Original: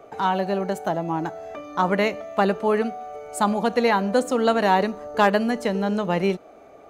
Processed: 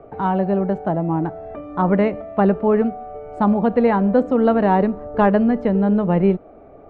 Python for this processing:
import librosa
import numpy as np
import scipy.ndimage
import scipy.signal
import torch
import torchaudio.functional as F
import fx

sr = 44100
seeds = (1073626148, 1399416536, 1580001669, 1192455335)

y = scipy.signal.sosfilt(scipy.signal.butter(2, 2500.0, 'lowpass', fs=sr, output='sos'), x)
y = fx.tilt_eq(y, sr, slope=-3.5)